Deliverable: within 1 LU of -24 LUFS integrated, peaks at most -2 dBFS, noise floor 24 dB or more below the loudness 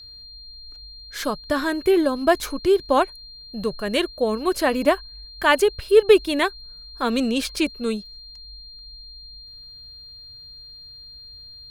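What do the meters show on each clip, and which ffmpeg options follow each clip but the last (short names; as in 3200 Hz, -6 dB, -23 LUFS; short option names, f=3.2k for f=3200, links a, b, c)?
steady tone 4200 Hz; tone level -40 dBFS; loudness -21.5 LUFS; peak -2.5 dBFS; loudness target -24.0 LUFS
-> -af "bandreject=f=4.2k:w=30"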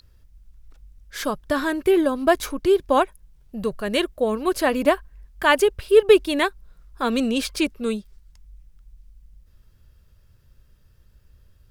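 steady tone none; loudness -21.5 LUFS; peak -2.5 dBFS; loudness target -24.0 LUFS
-> -af "volume=-2.5dB"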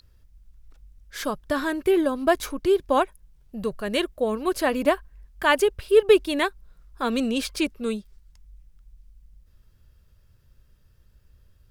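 loudness -24.0 LUFS; peak -5.0 dBFS; noise floor -59 dBFS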